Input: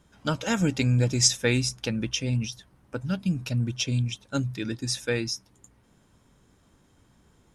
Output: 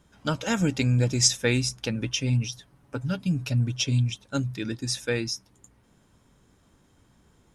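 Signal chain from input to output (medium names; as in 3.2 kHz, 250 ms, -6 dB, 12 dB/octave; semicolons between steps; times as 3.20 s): 1.95–4.10 s: comb 7.1 ms, depth 50%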